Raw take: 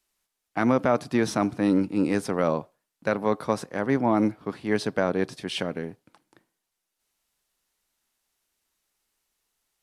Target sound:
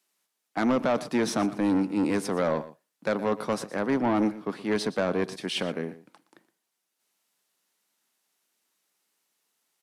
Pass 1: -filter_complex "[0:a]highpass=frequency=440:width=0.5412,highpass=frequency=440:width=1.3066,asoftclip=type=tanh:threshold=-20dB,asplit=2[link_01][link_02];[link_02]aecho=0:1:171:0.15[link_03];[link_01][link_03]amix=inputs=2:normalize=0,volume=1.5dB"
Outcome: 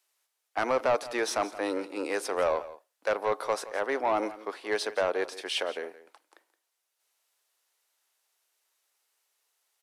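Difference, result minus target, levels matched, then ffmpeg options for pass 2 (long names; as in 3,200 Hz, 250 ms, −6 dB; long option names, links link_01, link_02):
125 Hz band −14.5 dB; echo 52 ms late
-filter_complex "[0:a]highpass=frequency=160:width=0.5412,highpass=frequency=160:width=1.3066,asoftclip=type=tanh:threshold=-20dB,asplit=2[link_01][link_02];[link_02]aecho=0:1:119:0.15[link_03];[link_01][link_03]amix=inputs=2:normalize=0,volume=1.5dB"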